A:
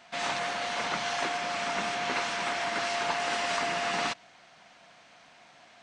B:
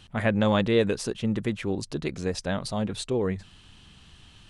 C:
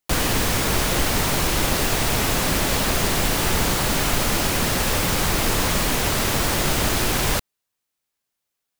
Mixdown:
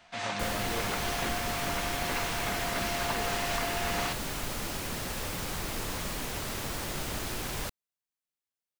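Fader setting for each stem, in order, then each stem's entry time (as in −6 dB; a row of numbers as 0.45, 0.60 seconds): −3.5, −18.0, −14.0 decibels; 0.00, 0.00, 0.30 seconds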